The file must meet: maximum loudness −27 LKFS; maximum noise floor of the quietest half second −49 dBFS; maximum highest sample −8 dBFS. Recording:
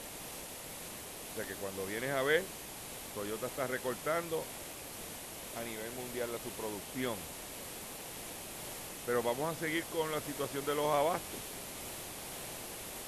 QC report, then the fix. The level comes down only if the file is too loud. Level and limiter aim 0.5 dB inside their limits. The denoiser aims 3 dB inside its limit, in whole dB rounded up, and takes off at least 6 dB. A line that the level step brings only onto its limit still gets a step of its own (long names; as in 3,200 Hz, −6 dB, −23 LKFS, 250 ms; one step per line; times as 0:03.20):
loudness −38.0 LKFS: in spec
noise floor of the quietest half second −46 dBFS: out of spec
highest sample −15.5 dBFS: in spec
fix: broadband denoise 6 dB, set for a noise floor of −46 dBFS